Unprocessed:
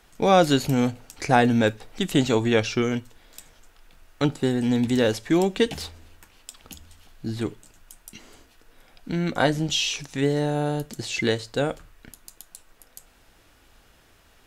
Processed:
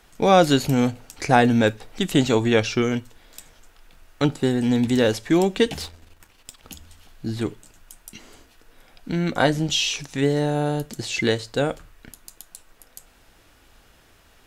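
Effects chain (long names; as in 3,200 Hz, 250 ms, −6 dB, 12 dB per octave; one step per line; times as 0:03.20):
0:05.85–0:06.63: gain on one half-wave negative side −7 dB
level +2 dB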